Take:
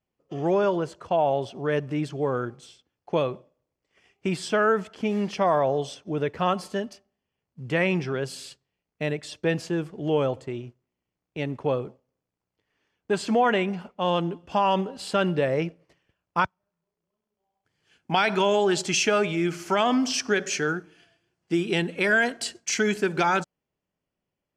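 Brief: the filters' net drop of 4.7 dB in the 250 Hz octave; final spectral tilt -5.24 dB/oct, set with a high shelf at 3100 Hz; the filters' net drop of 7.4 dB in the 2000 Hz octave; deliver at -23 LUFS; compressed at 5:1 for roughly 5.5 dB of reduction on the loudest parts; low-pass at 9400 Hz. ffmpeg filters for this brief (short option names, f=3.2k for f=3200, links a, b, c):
-af "lowpass=9.4k,equalizer=f=250:t=o:g=-7,equalizer=f=2k:t=o:g=-7.5,highshelf=f=3.1k:g=-8.5,acompressor=threshold=-26dB:ratio=5,volume=9.5dB"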